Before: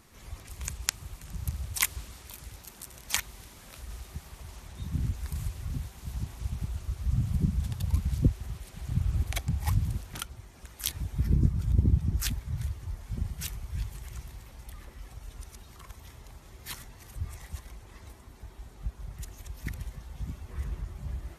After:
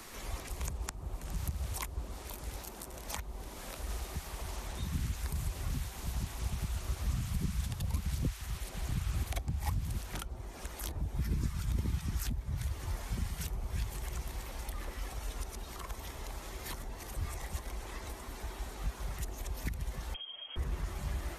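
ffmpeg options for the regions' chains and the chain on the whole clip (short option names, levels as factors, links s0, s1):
-filter_complex "[0:a]asettb=1/sr,asplit=3[s0][s1][s2];[s0]atrim=end=20.144[s3];[s1]atrim=start=20.14:end=20.56,asetpts=PTS-STARTPTS,afade=t=in:d=0.004:c=qsin,afade=t=out:st=0.416:d=0.004:c=qsin,acompressor=threshold=0.0112:ratio=2.5:attack=3.2:release=140:knee=1:detection=peak,lowpass=f=2800:t=q:w=0.5098,lowpass=f=2800:t=q:w=0.6013,lowpass=f=2800:t=q:w=0.9,lowpass=f=2800:t=q:w=2.563,afreqshift=-3300[s4];[s2]atrim=start=20.556[s5];[s3][s4]acrossfade=d=0.004:c1=hsin:c2=qsin[s6];[s6][s5]acrossfade=d=0.004:c1=qsin:c2=hsin,acrossover=split=82|170|910[s7][s8][s9][s10];[s7]acompressor=threshold=0.00708:ratio=4[s11];[s8]acompressor=threshold=0.0141:ratio=4[s12];[s9]acompressor=threshold=0.00178:ratio=4[s13];[s10]acompressor=threshold=0.00112:ratio=4[s14];[s11][s12][s13][s14]amix=inputs=4:normalize=0,equalizer=f=110:t=o:w=2.1:g=-13,volume=3.98"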